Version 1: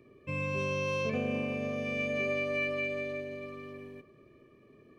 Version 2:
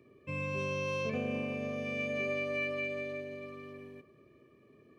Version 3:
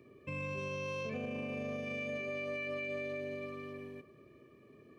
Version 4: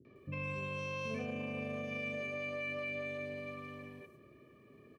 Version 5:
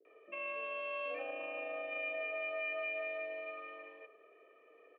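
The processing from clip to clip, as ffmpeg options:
-af "highpass=58,volume=-2.5dB"
-af "alimiter=level_in=9.5dB:limit=-24dB:level=0:latency=1:release=48,volume=-9.5dB,volume=2dB"
-filter_complex "[0:a]acrossover=split=380|5600[a][b][c];[b]adelay=50[d];[c]adelay=160[e];[a][d][e]amix=inputs=3:normalize=0,volume=1dB"
-af "highpass=f=390:t=q:w=0.5412,highpass=f=390:t=q:w=1.307,lowpass=f=3k:t=q:w=0.5176,lowpass=f=3k:t=q:w=0.7071,lowpass=f=3k:t=q:w=1.932,afreqshift=53,volume=1.5dB"

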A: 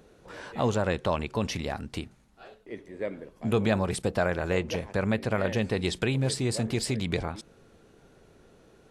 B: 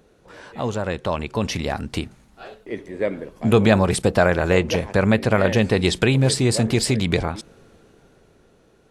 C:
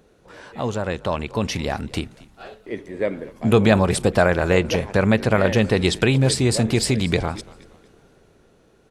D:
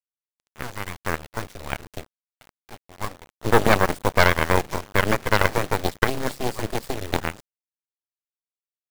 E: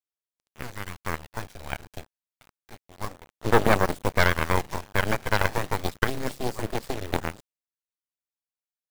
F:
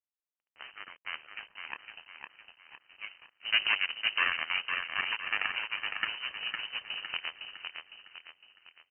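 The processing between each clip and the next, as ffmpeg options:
-af "dynaudnorm=f=230:g=13:m=11.5dB"
-filter_complex "[0:a]asplit=4[a][b][c][d];[b]adelay=234,afreqshift=-56,volume=-21.5dB[e];[c]adelay=468,afreqshift=-112,volume=-30.1dB[f];[d]adelay=702,afreqshift=-168,volume=-38.8dB[g];[a][e][f][g]amix=inputs=4:normalize=0"
-af "highshelf=f=1.9k:t=q:w=3:g=-7,acrusher=bits=4:mix=0:aa=0.000001,aeval=exprs='0.841*(cos(1*acos(clip(val(0)/0.841,-1,1)))-cos(1*PI/2))+0.376*(cos(4*acos(clip(val(0)/0.841,-1,1)))-cos(4*PI/2))+0.15*(cos(7*acos(clip(val(0)/0.841,-1,1)))-cos(7*PI/2))':c=same,volume=-4.5dB"
-af "aphaser=in_gain=1:out_gain=1:delay=1.3:decay=0.23:speed=0.29:type=sinusoidal,volume=-4.5dB"
-filter_complex "[0:a]highpass=f=260:w=0.5412,highpass=f=260:w=1.3066,asplit=2[a][b];[b]aecho=0:1:508|1016|1524|2032|2540:0.531|0.228|0.0982|0.0422|0.0181[c];[a][c]amix=inputs=2:normalize=0,lowpass=f=2.8k:t=q:w=0.5098,lowpass=f=2.8k:t=q:w=0.6013,lowpass=f=2.8k:t=q:w=0.9,lowpass=f=2.8k:t=q:w=2.563,afreqshift=-3300,volume=-7dB"

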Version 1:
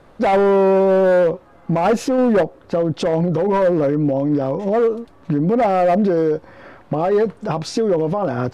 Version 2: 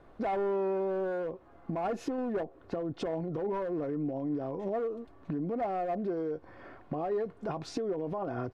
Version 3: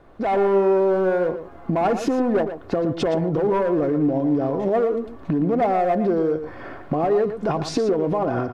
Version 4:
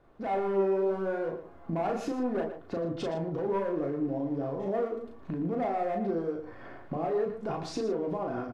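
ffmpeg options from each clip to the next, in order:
-af "acompressor=threshold=-22dB:ratio=6,highshelf=f=3.3k:g=-10,aecho=1:1:2.8:0.32,volume=-8.5dB"
-filter_complex "[0:a]dynaudnorm=f=190:g=3:m=7.5dB,asplit=2[a][b];[b]volume=27dB,asoftclip=hard,volume=-27dB,volume=-11.5dB[c];[a][c]amix=inputs=2:normalize=0,asplit=2[d][e];[e]adelay=116.6,volume=-10dB,highshelf=f=4k:g=-2.62[f];[d][f]amix=inputs=2:normalize=0,volume=3.5dB"
-filter_complex "[0:a]asplit=2[a][b];[b]adelay=36,volume=-4dB[c];[a][c]amix=inputs=2:normalize=0,flanger=delay=7.9:depth=7.4:regen=-74:speed=0.76:shape=triangular,volume=-7.5dB"

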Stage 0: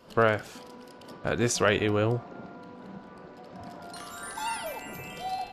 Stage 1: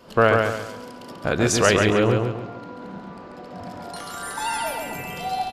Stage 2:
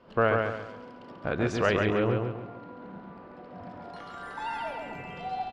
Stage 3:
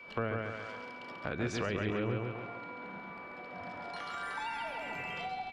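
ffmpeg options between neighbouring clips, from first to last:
-af "aecho=1:1:138|276|414|552|690:0.631|0.227|0.0818|0.0294|0.0106,volume=5.5dB"
-af "lowpass=2.7k,volume=-7dB"
-filter_complex "[0:a]acrossover=split=360[a][b];[b]acompressor=threshold=-38dB:ratio=8[c];[a][c]amix=inputs=2:normalize=0,aeval=exprs='val(0)+0.002*sin(2*PI*2300*n/s)':c=same,tiltshelf=f=740:g=-6.5"

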